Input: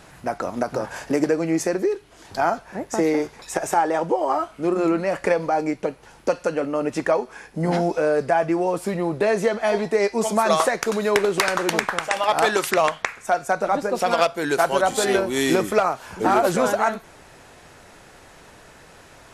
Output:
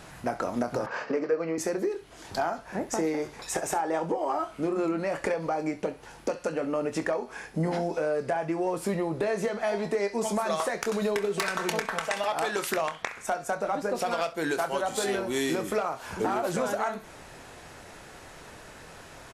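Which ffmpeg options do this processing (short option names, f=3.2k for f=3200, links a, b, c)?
-filter_complex "[0:a]asettb=1/sr,asplit=3[a][b][c];[a]atrim=end=11.014[d];[b]atrim=start=11.01:end=12.28,asetpts=PTS-STARTPTS,afade=t=in:d=0.004:c=qsin,afade=t=out:st=1.266:d=0.004:c=qsin,aecho=1:1:4.5:0.65,atrim=end_sample=56007[e];[c]atrim=start=12.276[f];[d][e]acrossfade=d=0.004:c1=hsin:c2=qsin[g];[g][f]acrossfade=d=0.004:c1=qsin:c2=hsin,acompressor=threshold=-25dB:ratio=6,aecho=1:1:25|66:0.282|0.133,asoftclip=type=tanh:threshold=-15dB,asettb=1/sr,asplit=3[h][i][j];[h]atrim=end=0.864[k];[i]atrim=start=0.86:end=1.58,asetpts=PTS-STARTPTS,afade=t=in:d=0.004:c=qsin,afade=t=out:st=0.716:d=0.004:c=qsin,highpass=230,equalizer=f=320:t=q:w=4:g=-5,equalizer=f=470:t=q:w=4:g=6,equalizer=f=770:t=q:w=4:g=-4,equalizer=f=1.2k:t=q:w=4:g=7,equalizer=f=3.5k:t=q:w=4:g=-8,lowpass=f=4.6k:w=0.5412,lowpass=f=4.6k:w=1.3066[l];[j]atrim=start=1.576[m];[k][l]acrossfade=d=0.004:c1=hsin:c2=qsin[n];[n][m]acrossfade=d=0.004:c1=qsin:c2=hsin"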